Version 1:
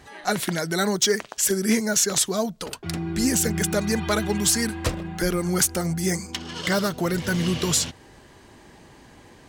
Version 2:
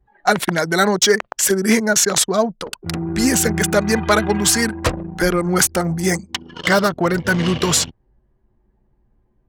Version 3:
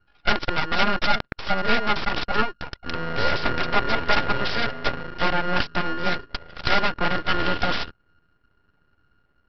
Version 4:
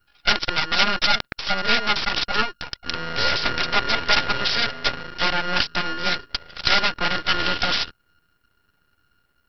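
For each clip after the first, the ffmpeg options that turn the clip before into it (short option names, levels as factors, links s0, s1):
-af "anlmdn=63.1,equalizer=f=1100:w=0.45:g=6.5,volume=1.58"
-af "aeval=exprs='val(0)*sin(2*PI*710*n/s)':c=same,aresample=11025,aeval=exprs='abs(val(0))':c=same,aresample=44100"
-af "crystalizer=i=6:c=0,volume=0.668"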